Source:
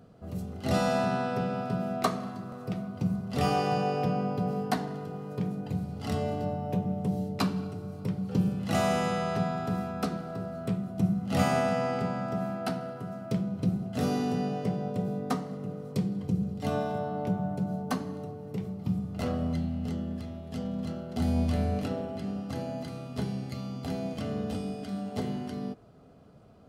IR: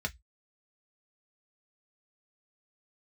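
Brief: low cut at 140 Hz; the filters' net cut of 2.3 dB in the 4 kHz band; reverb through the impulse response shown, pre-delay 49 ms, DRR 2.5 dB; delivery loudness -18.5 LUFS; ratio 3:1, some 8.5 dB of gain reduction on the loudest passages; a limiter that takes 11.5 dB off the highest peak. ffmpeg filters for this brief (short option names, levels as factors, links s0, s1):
-filter_complex "[0:a]highpass=140,equalizer=f=4000:t=o:g=-3,acompressor=threshold=0.02:ratio=3,alimiter=level_in=2.24:limit=0.0631:level=0:latency=1,volume=0.447,asplit=2[s0][s1];[1:a]atrim=start_sample=2205,adelay=49[s2];[s1][s2]afir=irnorm=-1:irlink=0,volume=0.473[s3];[s0][s3]amix=inputs=2:normalize=0,volume=7.5"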